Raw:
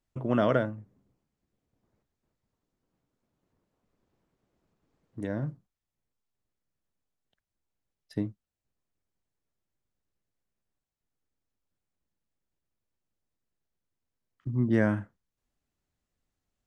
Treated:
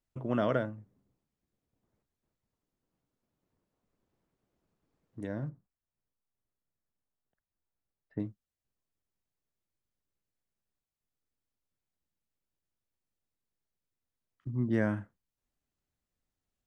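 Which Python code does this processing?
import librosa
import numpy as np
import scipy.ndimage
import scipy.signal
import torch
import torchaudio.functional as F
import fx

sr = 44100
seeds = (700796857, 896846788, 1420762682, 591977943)

y = fx.lowpass(x, sr, hz=1900.0, slope=24, at=(5.49, 8.2))
y = F.gain(torch.from_numpy(y), -4.5).numpy()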